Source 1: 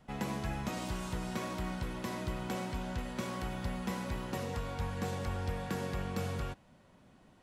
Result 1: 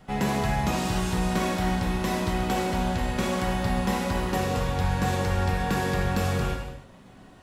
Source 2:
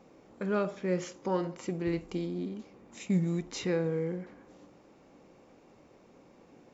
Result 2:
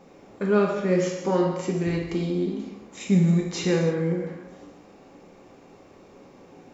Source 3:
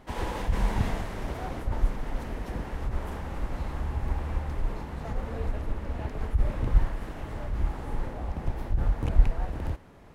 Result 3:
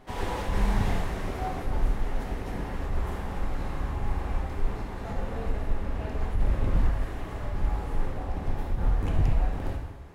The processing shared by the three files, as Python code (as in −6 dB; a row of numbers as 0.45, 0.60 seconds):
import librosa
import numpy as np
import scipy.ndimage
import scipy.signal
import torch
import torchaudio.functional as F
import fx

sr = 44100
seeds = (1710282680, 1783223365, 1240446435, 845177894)

y = fx.rev_gated(x, sr, seeds[0], gate_ms=350, shape='falling', drr_db=-0.5)
y = 10.0 ** (-13.5 / 20.0) * (np.abs((y / 10.0 ** (-13.5 / 20.0) + 3.0) % 4.0 - 2.0) - 1.0)
y = y * 10.0 ** (-26 / 20.0) / np.sqrt(np.mean(np.square(y)))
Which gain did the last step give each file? +8.5, +5.0, −1.5 decibels